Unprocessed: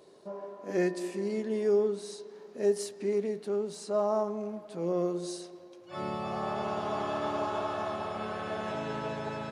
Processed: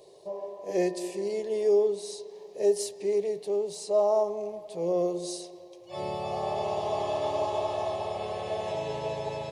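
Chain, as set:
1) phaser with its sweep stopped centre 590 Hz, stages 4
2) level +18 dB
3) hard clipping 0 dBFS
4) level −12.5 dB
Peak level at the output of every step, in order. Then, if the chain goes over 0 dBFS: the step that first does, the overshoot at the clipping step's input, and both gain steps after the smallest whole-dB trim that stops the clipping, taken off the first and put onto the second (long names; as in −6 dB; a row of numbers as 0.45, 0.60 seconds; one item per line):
−20.5, −2.5, −2.5, −15.0 dBFS
no step passes full scale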